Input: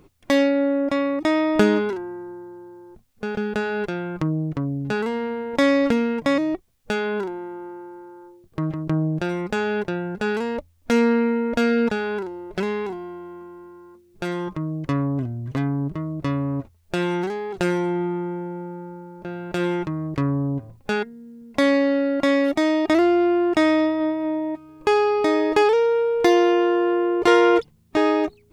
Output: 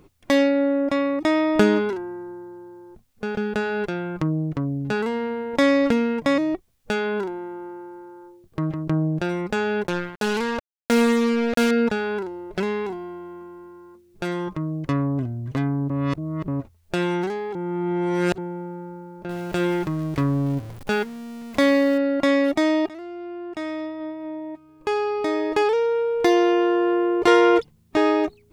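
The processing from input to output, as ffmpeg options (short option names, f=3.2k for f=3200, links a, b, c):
-filter_complex "[0:a]asettb=1/sr,asplit=3[a][b][c];[a]atrim=end=9.874[d];[b]atrim=start=9.87:end=11.71,asetpts=PTS-STARTPTS,afade=t=in:d=0.004:c=qsin,afade=t=out:st=1.836:d=0.004:c=qsin,acrusher=bits=3:mix=0:aa=0.5[e];[c]atrim=start=11.706[f];[d][e]acrossfade=d=0.004:c1=hsin:c2=qsin[g];[g][f]acrossfade=d=0.004:c1=qsin:c2=hsin,asettb=1/sr,asplit=3[h][i][j];[h]atrim=end=19.294[k];[i]atrim=start=19.29:end=21.98,asetpts=PTS-STARTPTS,afade=t=in:d=0.004:c=qsin,afade=t=out:st=2.686:d=0.004:c=qsin,aeval=exprs='val(0)+0.5*0.0178*sgn(val(0))':c=same[l];[j]atrim=start=21.976[m];[k][l]acrossfade=d=0.004:c1=hsin:c2=qsin[n];[n][m]acrossfade=d=0.004:c1=qsin:c2=hsin,asplit=6[o][p][q][r][s][t];[o]atrim=end=15.902[u];[p]atrim=start=15.898:end=16.482,asetpts=PTS-STARTPTS,areverse[v];[q]atrim=start=16.478:end=17.552[w];[r]atrim=start=17.548:end=18.382,asetpts=PTS-STARTPTS,areverse[x];[s]atrim=start=18.378:end=22.89,asetpts=PTS-STARTPTS,afade=t=out:st=4.508:d=0.004:c=hsin:silence=0.0794328[y];[t]atrim=start=22.89,asetpts=PTS-STARTPTS,afade=t=in:d=4.06:silence=0.0794328[z];[u][v]acrossfade=d=0.004:c1=hsin:c2=hsin[aa];[aa][w]acrossfade=d=0.004:c1=hsin:c2=hsin[ab];[ab][x]acrossfade=d=0.004:c1=hsin:c2=hsin[ac];[y][z]concat=n=2:v=0:a=1[ad];[ac][ad]acrossfade=d=0.004:c1=hsin:c2=hsin"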